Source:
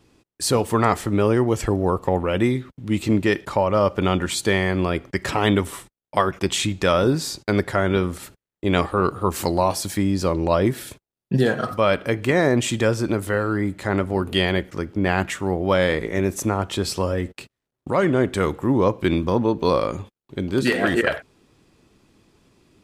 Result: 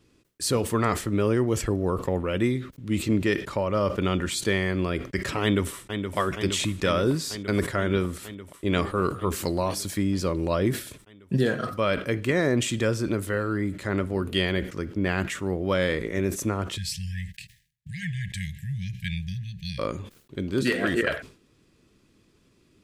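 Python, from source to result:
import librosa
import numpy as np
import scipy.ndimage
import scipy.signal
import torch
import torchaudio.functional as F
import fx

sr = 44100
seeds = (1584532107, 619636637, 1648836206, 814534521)

y = fx.echo_throw(x, sr, start_s=5.42, length_s=0.75, ms=470, feedback_pct=80, wet_db=-7.5)
y = fx.brickwall_bandstop(y, sr, low_hz=190.0, high_hz=1600.0, at=(16.76, 19.78), fade=0.02)
y = fx.peak_eq(y, sr, hz=810.0, db=-8.5, octaves=0.6)
y = fx.sustainer(y, sr, db_per_s=130.0)
y = F.gain(torch.from_numpy(y), -4.0).numpy()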